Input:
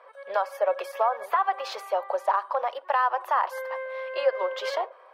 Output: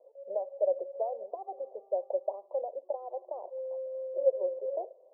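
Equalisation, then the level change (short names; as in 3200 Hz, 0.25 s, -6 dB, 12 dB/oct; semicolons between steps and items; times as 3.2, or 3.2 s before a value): steep low-pass 650 Hz 48 dB/oct; -2.0 dB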